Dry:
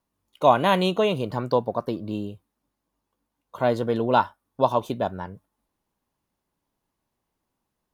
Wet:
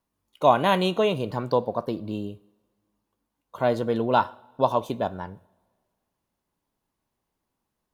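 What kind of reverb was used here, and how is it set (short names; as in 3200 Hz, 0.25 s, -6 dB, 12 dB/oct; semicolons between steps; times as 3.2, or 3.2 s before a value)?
two-slope reverb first 0.6 s, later 1.8 s, from -16 dB, DRR 17 dB; gain -1 dB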